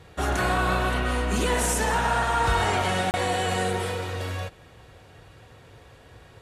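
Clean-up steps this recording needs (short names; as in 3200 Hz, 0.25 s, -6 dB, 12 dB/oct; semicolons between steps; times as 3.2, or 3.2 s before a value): interpolate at 3.11, 29 ms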